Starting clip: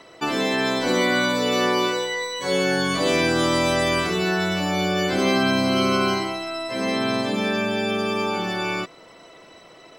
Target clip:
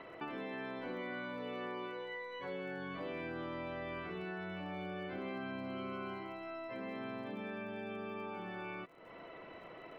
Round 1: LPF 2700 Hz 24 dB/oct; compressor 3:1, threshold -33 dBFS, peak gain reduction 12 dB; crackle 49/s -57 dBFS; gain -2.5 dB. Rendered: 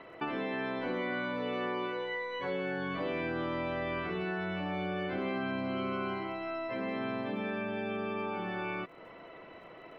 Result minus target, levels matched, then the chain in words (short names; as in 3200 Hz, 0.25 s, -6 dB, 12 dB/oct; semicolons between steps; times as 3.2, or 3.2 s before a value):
compressor: peak gain reduction -7.5 dB
LPF 2700 Hz 24 dB/oct; compressor 3:1, threshold -44.5 dBFS, peak gain reduction 19.5 dB; crackle 49/s -57 dBFS; gain -2.5 dB